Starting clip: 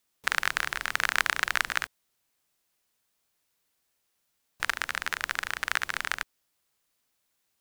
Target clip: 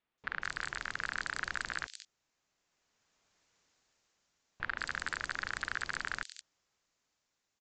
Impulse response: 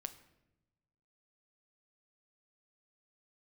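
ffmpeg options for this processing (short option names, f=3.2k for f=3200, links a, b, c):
-filter_complex "[0:a]dynaudnorm=f=300:g=7:m=12dB,aresample=16000,asoftclip=type=tanh:threshold=-18.5dB,aresample=44100,acrossover=split=3400[a][b];[b]adelay=180[c];[a][c]amix=inputs=2:normalize=0,volume=-3.5dB"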